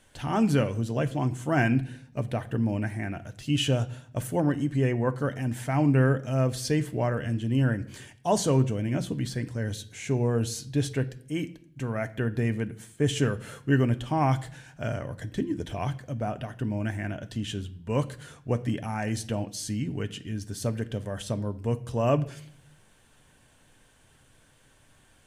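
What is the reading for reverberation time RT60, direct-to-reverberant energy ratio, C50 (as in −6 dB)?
0.60 s, 8.5 dB, 17.5 dB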